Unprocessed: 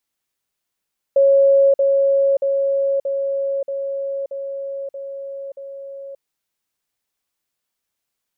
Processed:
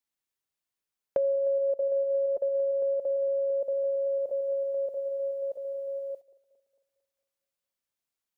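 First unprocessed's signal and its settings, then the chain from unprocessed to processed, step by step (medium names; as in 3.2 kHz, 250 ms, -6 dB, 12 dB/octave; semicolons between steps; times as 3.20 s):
level ladder 551 Hz -9.5 dBFS, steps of -3 dB, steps 8, 0.58 s 0.05 s
backward echo that repeats 113 ms, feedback 68%, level -13.5 dB; gate -42 dBFS, range -10 dB; compression 6:1, threshold -26 dBFS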